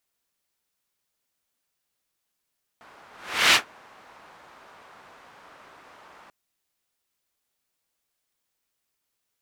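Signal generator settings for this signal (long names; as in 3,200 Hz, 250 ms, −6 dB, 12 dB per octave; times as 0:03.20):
pass-by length 3.49 s, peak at 0:00.73, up 0.45 s, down 0.12 s, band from 1,100 Hz, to 2,700 Hz, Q 1.2, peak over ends 34.5 dB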